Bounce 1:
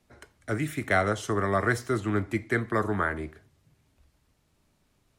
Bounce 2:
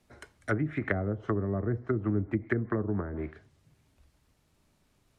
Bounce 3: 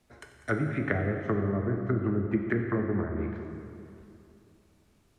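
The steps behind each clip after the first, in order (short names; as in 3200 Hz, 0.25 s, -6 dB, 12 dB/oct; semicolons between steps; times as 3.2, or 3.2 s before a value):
treble ducked by the level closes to 340 Hz, closed at -23 dBFS; dynamic EQ 1800 Hz, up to +6 dB, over -52 dBFS, Q 1.1
split-band echo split 340 Hz, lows 0.284 s, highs 92 ms, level -16 dB; plate-style reverb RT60 2.7 s, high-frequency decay 0.7×, DRR 3 dB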